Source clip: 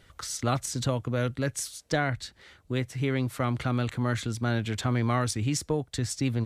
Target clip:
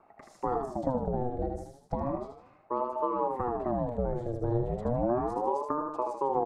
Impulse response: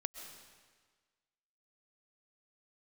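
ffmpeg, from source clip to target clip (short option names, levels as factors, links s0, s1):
-filter_complex "[0:a]firequalizer=gain_entry='entry(180,0);entry(350,6);entry(2600,-26)':delay=0.05:min_phase=1,acrossover=split=760|2600[s0][s1][s2];[s1]acompressor=threshold=0.002:ratio=6[s3];[s0][s3][s2]amix=inputs=3:normalize=0,aecho=1:1:77|154|231|308|385:0.562|0.247|0.109|0.0479|0.0211,acrossover=split=190[s4][s5];[s5]acompressor=threshold=0.0447:ratio=6[s6];[s4][s6]amix=inputs=2:normalize=0,aeval=exprs='val(0)*sin(2*PI*490*n/s+490*0.55/0.34*sin(2*PI*0.34*n/s))':c=same"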